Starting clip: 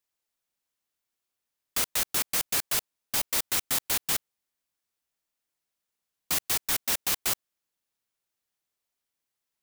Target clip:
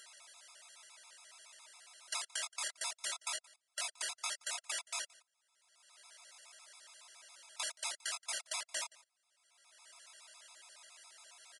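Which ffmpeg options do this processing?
ffmpeg -i in.wav -filter_complex "[0:a]highpass=frequency=730:width=0.5412,highpass=frequency=730:width=1.3066,aecho=1:1:2.6:0.96,acompressor=mode=upward:threshold=-31dB:ratio=2.5,alimiter=limit=-18dB:level=0:latency=1:release=278,acompressor=threshold=-32dB:ratio=6,flanger=delay=16:depth=6.2:speed=2.5,asetrate=36603,aresample=44100,asplit=2[link_01][link_02];[link_02]aecho=0:1:174:0.0708[link_03];[link_01][link_03]amix=inputs=2:normalize=0,aresample=22050,aresample=44100,afftfilt=real='re*gt(sin(2*PI*7.2*pts/sr)*(1-2*mod(floor(b*sr/1024/680),2)),0)':imag='im*gt(sin(2*PI*7.2*pts/sr)*(1-2*mod(floor(b*sr/1024/680),2)),0)':win_size=1024:overlap=0.75,volume=5dB" out.wav

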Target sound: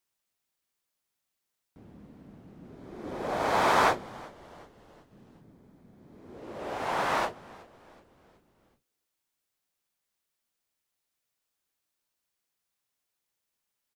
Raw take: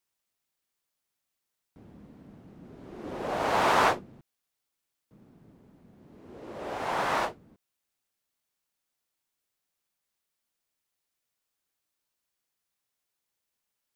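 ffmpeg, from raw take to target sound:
ffmpeg -i in.wav -filter_complex "[0:a]asettb=1/sr,asplit=3[link_01][link_02][link_03];[link_01]atrim=end=2.754[link_04];[link_02]atrim=start=2.75:end=6.37,asetpts=PTS-STARTPTS,afade=type=in:duration=0.004:curve=qsin,afade=type=out:start_time=3.616:duration=0.004:curve=qsin,bandreject=frequency=2800:width=11[link_05];[link_03]atrim=start=6.366[link_06];[link_04][link_05]acrossfade=duration=0.004:curve1=hsin:curve2=qsin[link_07];[link_07][link_06]acrossfade=duration=0.004:curve1=qsin:curve2=hsin,asplit=5[link_08][link_09][link_10][link_11][link_12];[link_09]adelay=373,afreqshift=-150,volume=-22dB[link_13];[link_10]adelay=746,afreqshift=-300,volume=-27.8dB[link_14];[link_11]adelay=1119,afreqshift=-450,volume=-33.7dB[link_15];[link_12]adelay=1492,afreqshift=-600,volume=-39.5dB[link_16];[link_08][link_13][link_14][link_15][link_16]amix=inputs=5:normalize=0" out.wav

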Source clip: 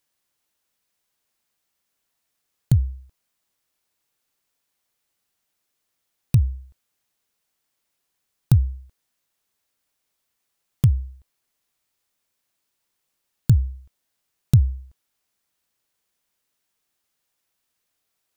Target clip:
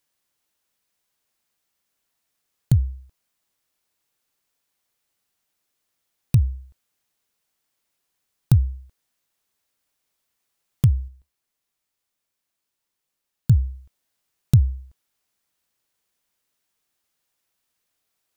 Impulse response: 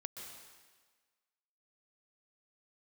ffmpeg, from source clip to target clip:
-filter_complex "[0:a]asettb=1/sr,asplit=3[link_01][link_02][link_03];[link_01]atrim=end=11.084[link_04];[link_02]atrim=start=11.08:end=13.5,asetpts=PTS-STARTPTS,afade=type=in:duration=0.004:curve=qsin,afade=type=out:start_time=2.416:duration=0.004:curve=qsin,flanger=delay=3.4:depth=7.2:regen=-77:speed=1.4:shape=triangular[link_05];[link_03]atrim=start=13.496[link_06];[link_04][link_05]acrossfade=duration=0.004:curve1=hsin:curve2=qsin[link_07];[link_07][link_06]acrossfade=duration=0.004:curve1=qsin:curve2=hsin"

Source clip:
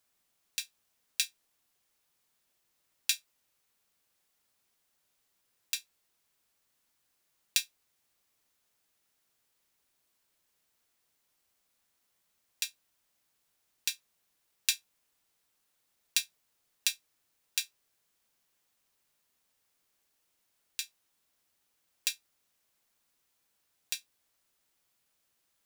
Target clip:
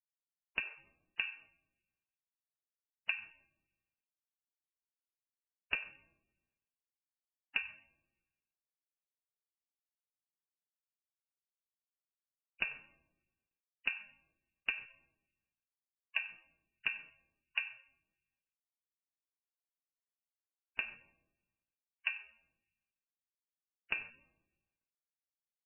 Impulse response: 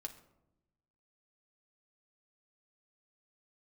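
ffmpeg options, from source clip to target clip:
-filter_complex "[0:a]agate=range=-44dB:threshold=-56dB:ratio=16:detection=peak,adynamicequalizer=threshold=0.001:dfrequency=690:dqfactor=1.5:tfrequency=690:tqfactor=1.5:attack=5:release=100:ratio=0.375:range=2:mode=boostabove:tftype=bell,acompressor=threshold=-29dB:ratio=12,asoftclip=type=hard:threshold=-9dB,asplit=2[link_01][link_02];[link_02]adelay=93.29,volume=-17dB,highshelf=frequency=4000:gain=-2.1[link_03];[link_01][link_03]amix=inputs=2:normalize=0[link_04];[1:a]atrim=start_sample=2205[link_05];[link_04][link_05]afir=irnorm=-1:irlink=0,volume=12.5dB" -ar 11025 -c:a libmp3lame -b:a 8k

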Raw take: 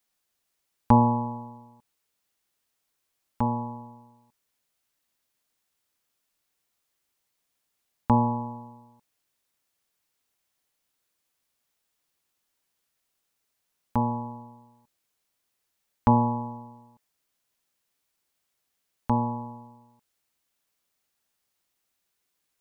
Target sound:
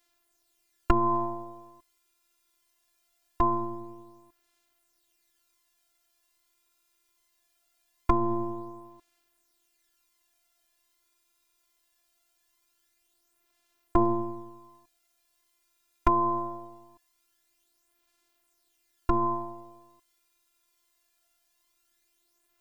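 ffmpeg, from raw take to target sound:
ffmpeg -i in.wav -af "acompressor=threshold=-22dB:ratio=6,aphaser=in_gain=1:out_gain=1:delay=2.1:decay=0.46:speed=0.22:type=sinusoidal,afftfilt=real='hypot(re,im)*cos(PI*b)':imag='0':win_size=512:overlap=0.75,volume=8dB" out.wav

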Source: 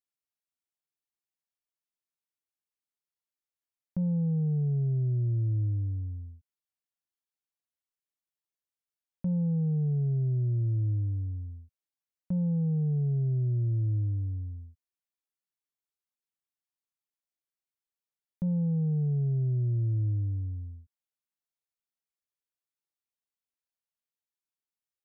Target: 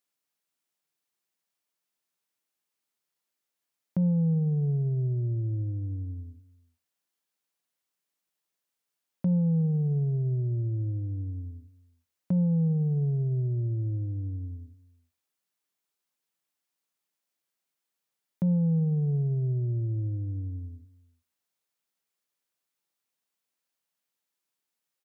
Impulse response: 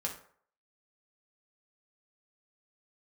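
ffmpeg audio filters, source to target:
-filter_complex "[0:a]acompressor=threshold=-35dB:ratio=2,highpass=140,aecho=1:1:364:0.0794,asplit=2[link_01][link_02];[1:a]atrim=start_sample=2205[link_03];[link_02][link_03]afir=irnorm=-1:irlink=0,volume=-19.5dB[link_04];[link_01][link_04]amix=inputs=2:normalize=0,volume=8dB"

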